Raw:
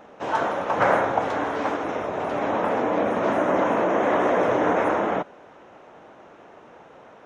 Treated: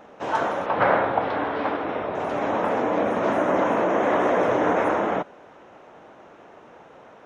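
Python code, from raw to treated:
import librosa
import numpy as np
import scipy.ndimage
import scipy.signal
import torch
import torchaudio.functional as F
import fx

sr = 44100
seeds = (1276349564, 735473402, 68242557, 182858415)

y = fx.steep_lowpass(x, sr, hz=4500.0, slope=36, at=(0.66, 2.15))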